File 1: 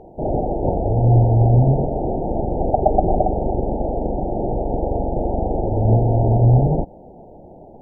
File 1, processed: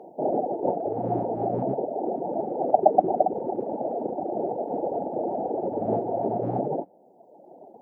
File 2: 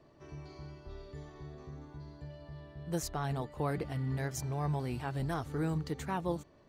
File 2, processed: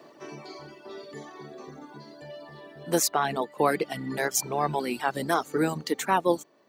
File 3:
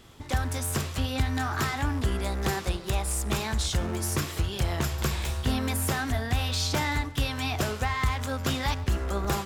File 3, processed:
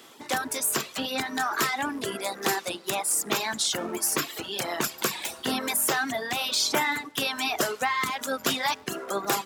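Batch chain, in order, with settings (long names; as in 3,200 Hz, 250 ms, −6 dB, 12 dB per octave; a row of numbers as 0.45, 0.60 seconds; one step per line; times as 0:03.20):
sub-octave generator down 1 octave, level −5 dB
Bessel high-pass filter 320 Hz, order 4
reverb reduction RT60 1.4 s
high-shelf EQ 9,400 Hz +5 dB
loudness normalisation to −27 LKFS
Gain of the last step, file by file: 0.0, +14.0, +5.5 decibels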